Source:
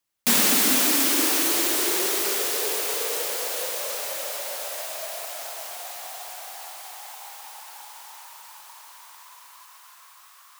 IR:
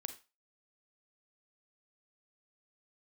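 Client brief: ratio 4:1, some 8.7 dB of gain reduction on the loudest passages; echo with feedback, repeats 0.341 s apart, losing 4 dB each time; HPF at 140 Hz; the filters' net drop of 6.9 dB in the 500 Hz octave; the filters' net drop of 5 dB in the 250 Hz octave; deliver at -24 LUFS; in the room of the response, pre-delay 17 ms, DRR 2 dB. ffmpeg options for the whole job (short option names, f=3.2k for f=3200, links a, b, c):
-filter_complex "[0:a]highpass=140,equalizer=f=250:t=o:g=-3,equalizer=f=500:t=o:g=-8,acompressor=threshold=-27dB:ratio=4,aecho=1:1:341|682|1023|1364|1705|2046|2387|2728|3069:0.631|0.398|0.25|0.158|0.0994|0.0626|0.0394|0.0249|0.0157,asplit=2[a][b];[1:a]atrim=start_sample=2205,adelay=17[c];[b][c]afir=irnorm=-1:irlink=0,volume=0.5dB[d];[a][d]amix=inputs=2:normalize=0,volume=1dB"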